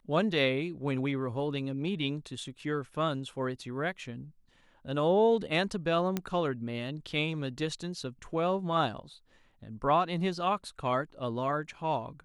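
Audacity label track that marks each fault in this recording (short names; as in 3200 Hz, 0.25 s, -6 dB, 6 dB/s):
6.170000	6.170000	pop -16 dBFS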